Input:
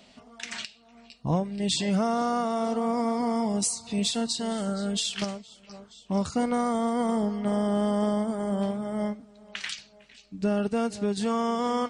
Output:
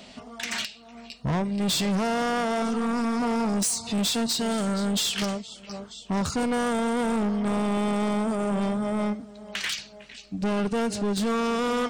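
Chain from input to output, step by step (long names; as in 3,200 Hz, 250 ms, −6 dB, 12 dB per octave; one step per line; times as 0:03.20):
0:02.62–0:03.22: parametric band 610 Hz −13 dB 0.47 octaves
soft clipping −31 dBFS, distortion −7 dB
level +8.5 dB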